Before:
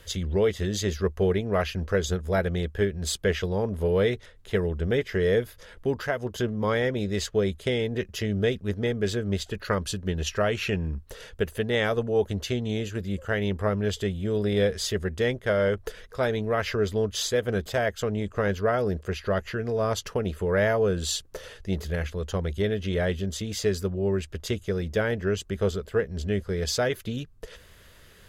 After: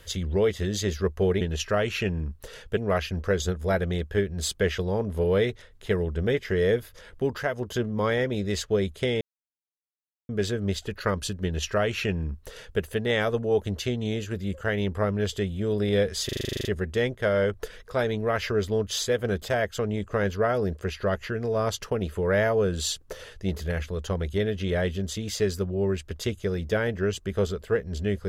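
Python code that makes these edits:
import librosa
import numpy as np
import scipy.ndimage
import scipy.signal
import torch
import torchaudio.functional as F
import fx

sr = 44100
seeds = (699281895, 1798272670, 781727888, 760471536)

y = fx.edit(x, sr, fx.silence(start_s=7.85, length_s=1.08),
    fx.duplicate(start_s=10.08, length_s=1.36, to_s=1.41),
    fx.stutter(start_s=14.89, slice_s=0.04, count=11), tone=tone)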